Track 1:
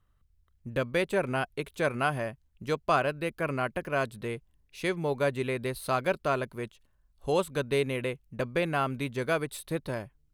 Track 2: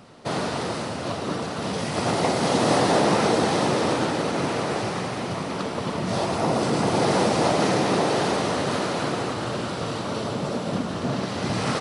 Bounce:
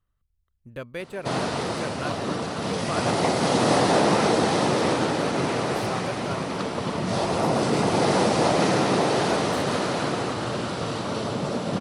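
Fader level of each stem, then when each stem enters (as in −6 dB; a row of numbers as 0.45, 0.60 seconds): −6.5, 0.0 decibels; 0.00, 1.00 seconds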